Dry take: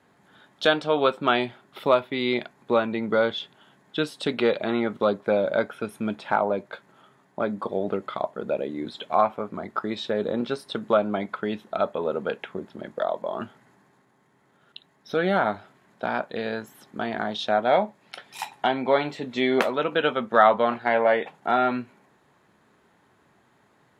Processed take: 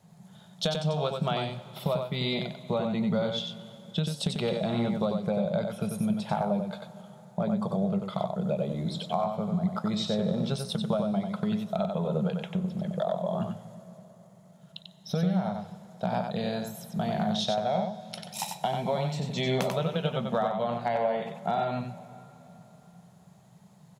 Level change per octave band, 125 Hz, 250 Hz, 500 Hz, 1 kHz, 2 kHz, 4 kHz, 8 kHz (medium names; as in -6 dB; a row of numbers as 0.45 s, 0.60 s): +9.0 dB, 0.0 dB, -6.5 dB, -7.0 dB, -12.5 dB, -2.0 dB, no reading